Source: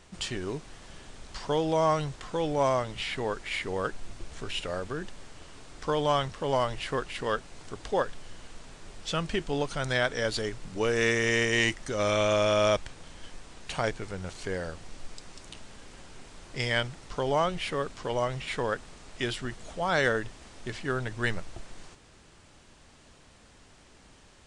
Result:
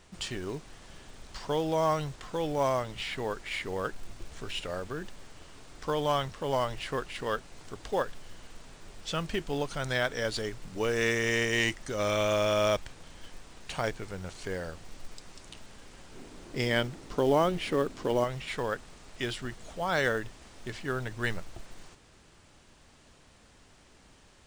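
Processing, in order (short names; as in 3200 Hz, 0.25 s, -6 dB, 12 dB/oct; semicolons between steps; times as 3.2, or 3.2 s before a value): 16.12–18.24 bell 300 Hz +10 dB 1.5 oct; in parallel at -4 dB: short-mantissa float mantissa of 2-bit; on the sum: gain -6.5 dB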